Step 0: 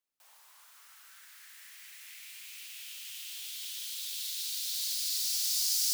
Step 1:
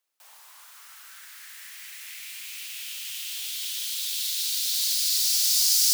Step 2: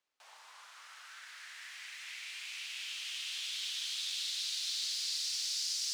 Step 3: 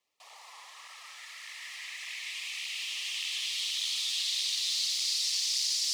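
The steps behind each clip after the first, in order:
HPF 390 Hz 12 dB/oct; gain +8.5 dB
compressor 3:1, threshold -28 dBFS, peak gain reduction 8 dB; air absorption 96 m
Butterworth band-stop 1500 Hz, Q 3.4; on a send at -8 dB: reverb RT60 0.90 s, pre-delay 78 ms; on the sum: tape flanging out of phase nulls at 1.7 Hz, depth 7.8 ms; gain +8.5 dB

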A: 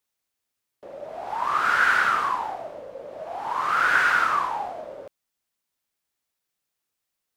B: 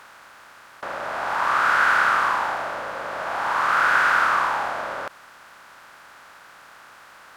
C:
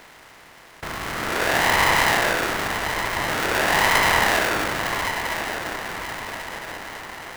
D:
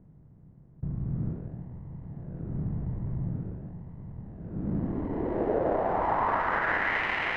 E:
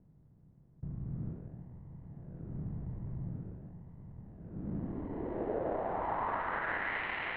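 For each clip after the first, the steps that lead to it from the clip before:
per-bin compression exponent 0.4; gain -2.5 dB
diffused feedback echo 1.164 s, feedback 50%, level -8 dB; polarity switched at an audio rate 510 Hz
negative-ratio compressor -26 dBFS, ratio -1; low-pass sweep 150 Hz -> 2400 Hz, 4.42–7.08
steep low-pass 4100 Hz 48 dB/oct; gain -8 dB

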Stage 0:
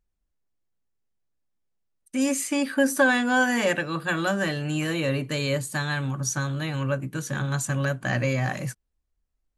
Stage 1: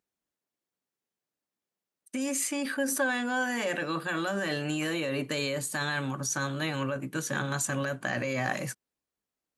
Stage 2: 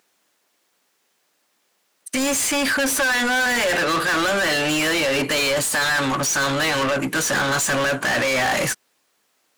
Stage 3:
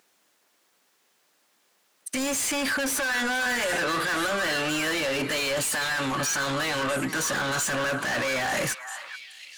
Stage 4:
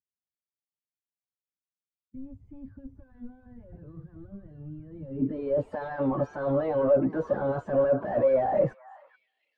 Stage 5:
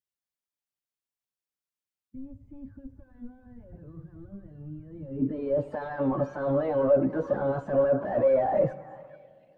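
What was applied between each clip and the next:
HPF 220 Hz 12 dB/oct; in parallel at +2 dB: negative-ratio compressor -30 dBFS, ratio -0.5; on the sum: gain -8.5 dB
overdrive pedal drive 31 dB, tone 7900 Hz, clips at -14.5 dBFS; gain +1 dB
limiter -23.5 dBFS, peak gain reduction 9 dB; delay with a stepping band-pass 0.428 s, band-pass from 1300 Hz, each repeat 1.4 oct, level -5.5 dB
per-bin expansion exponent 1.5; low-pass sweep 110 Hz -> 580 Hz, 4.86–5.7; gain +4 dB
plate-style reverb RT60 2.4 s, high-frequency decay 1×, DRR 16 dB

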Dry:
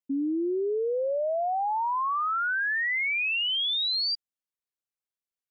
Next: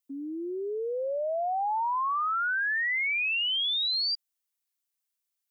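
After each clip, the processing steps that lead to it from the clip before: HPF 310 Hz; tilt +3 dB/oct; limiter -25 dBFS, peak gain reduction 7.5 dB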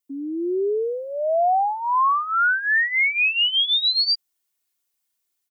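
bell 190 Hz +5 dB 1.6 oct; comb 2.8 ms, depth 66%; AGC gain up to 6 dB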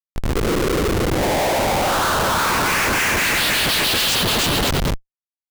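bouncing-ball echo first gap 0.31 s, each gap 0.8×, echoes 5; noise vocoder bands 8; Schmitt trigger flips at -24 dBFS; gain +3 dB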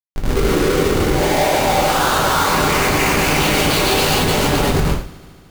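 median filter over 25 samples; multi-head echo 74 ms, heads second and third, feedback 61%, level -24 dB; non-linear reverb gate 0.16 s falling, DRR -1.5 dB; gain -1 dB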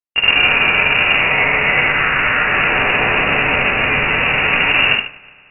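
spectral whitening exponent 0.6; in parallel at -6 dB: bit-crush 5-bit; on the sum: inverted band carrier 2800 Hz; gain -1 dB

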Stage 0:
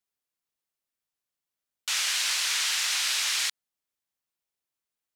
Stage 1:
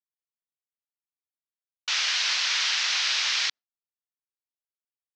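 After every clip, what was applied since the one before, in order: HPF 260 Hz 6 dB/oct; gate with hold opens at -23 dBFS; steep low-pass 5900 Hz 36 dB/oct; gain +3 dB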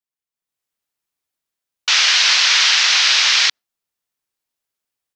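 AGC; gain +1.5 dB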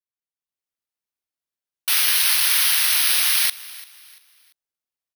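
feedback echo 0.342 s, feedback 35%, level -19.5 dB; careless resampling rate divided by 3×, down filtered, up zero stuff; gain -9 dB

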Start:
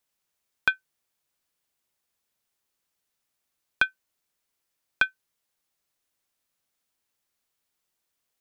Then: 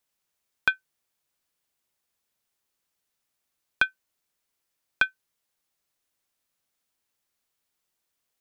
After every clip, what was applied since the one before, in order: nothing audible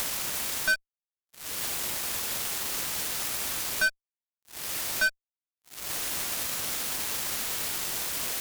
upward compressor, threshold -26 dBFS; fuzz box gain 46 dB, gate -52 dBFS; limiter -20 dBFS, peak gain reduction 10 dB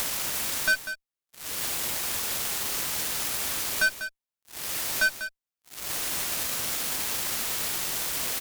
echo 0.195 s -11 dB; gain +1.5 dB

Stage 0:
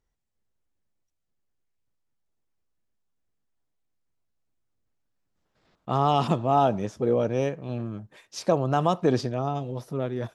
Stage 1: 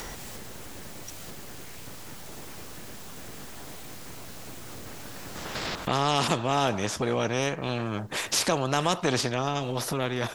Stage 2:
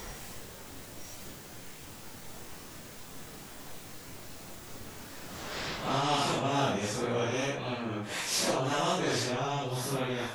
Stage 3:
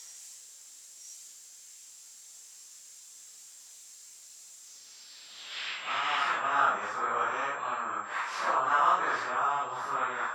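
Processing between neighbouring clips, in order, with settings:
upward compressor, threshold -23 dBFS; spectral compressor 2:1
phase scrambler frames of 0.2 s; gain -3.5 dB
band-pass sweep 7000 Hz -> 1200 Hz, 4.58–6.77; whine 7500 Hz -60 dBFS; dynamic EQ 1300 Hz, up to +8 dB, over -53 dBFS, Q 1; gain +5 dB

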